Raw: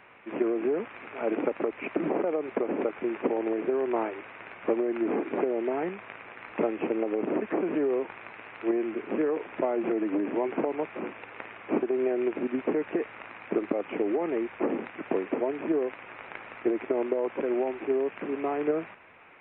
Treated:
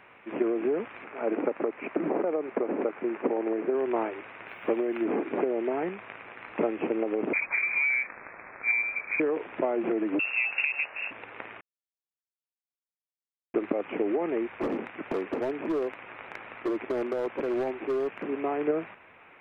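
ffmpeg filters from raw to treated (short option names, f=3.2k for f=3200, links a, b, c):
-filter_complex "[0:a]asettb=1/sr,asplit=3[a][b][c];[a]atrim=end=1.044[d];[b]atrim=start=1.04:end=3.75,asetpts=PTS-STARTPTS,afade=t=in:d=0.004:c=qsin,afade=t=out:st=2.706:d=0.004:c=qsin,highpass=150,lowpass=2.4k[e];[c]atrim=start=3.746[f];[d][e]acrossfade=d=0.004:c1=hsin:c2=qsin[g];[g][f]acrossfade=d=0.004:c1=qsin:c2=hsin,asettb=1/sr,asplit=3[h][i][j];[h]atrim=end=4.484[k];[i]atrim=start=4.48:end=5.05,asetpts=PTS-STARTPTS,afade=t=in:d=0.004:c=qsin,afade=t=out:st=0.566:d=0.004:c=qsin,aemphasis=mode=production:type=75fm[l];[j]atrim=start=5.046[m];[k][l]acrossfade=d=0.004:c1=hsin:c2=qsin[n];[n][m]acrossfade=d=0.004:c1=qsin:c2=hsin,asettb=1/sr,asplit=3[o][p][q];[o]atrim=end=7.334[r];[p]atrim=start=7.33:end=9.2,asetpts=PTS-STARTPTS,afade=t=in:d=0.004:c=qsin,afade=t=out:st=1.866:d=0.004:c=qsin,lowpass=f=2.3k:t=q:w=0.5098,lowpass=f=2.3k:t=q:w=0.6013,lowpass=f=2.3k:t=q:w=0.9,lowpass=f=2.3k:t=q:w=2.563,afreqshift=-2700[s];[q]atrim=start=9.196[t];[r][s]acrossfade=d=0.004:c1=hsin:c2=qsin[u];[u][t]acrossfade=d=0.004:c1=qsin:c2=hsin,asettb=1/sr,asplit=3[v][w][x];[v]atrim=end=10.194[y];[w]atrim=start=10.19:end=11.11,asetpts=PTS-STARTPTS,afade=t=in:d=0.004:c=qsin,afade=t=out:st=0.916:d=0.004:c=qsin,lowpass=f=2.6k:t=q:w=0.5098,lowpass=f=2.6k:t=q:w=0.6013,lowpass=f=2.6k:t=q:w=0.9,lowpass=f=2.6k:t=q:w=2.563,afreqshift=-3000[z];[x]atrim=start=11.106[aa];[y][z]acrossfade=d=0.004:c1=hsin:c2=qsin[ab];[ab][aa]acrossfade=d=0.004:c1=qsin:c2=hsin,asettb=1/sr,asplit=3[ac][ad][ae];[ac]atrim=end=14.564[af];[ad]atrim=start=14.56:end=18.24,asetpts=PTS-STARTPTS,afade=t=in:d=0.004:c=qsin,afade=t=out:st=3.676:d=0.004:c=qsin,asoftclip=type=hard:threshold=-24.5dB[ag];[ae]atrim=start=18.236[ah];[af][ag]acrossfade=d=0.004:c1=hsin:c2=qsin[ai];[ai][ah]acrossfade=d=0.004:c1=qsin:c2=hsin,asplit=3[aj][ak][al];[aj]atrim=end=11.61,asetpts=PTS-STARTPTS,afade=t=out:st=11.606:d=0.004:c=hsin[am];[ak]atrim=start=11.61:end=13.54,asetpts=PTS-STARTPTS,volume=0[an];[al]atrim=start=13.54,asetpts=PTS-STARTPTS,afade=t=in:d=0.004:c=hsin[ao];[am][an][ao]concat=n=3:v=0:a=1"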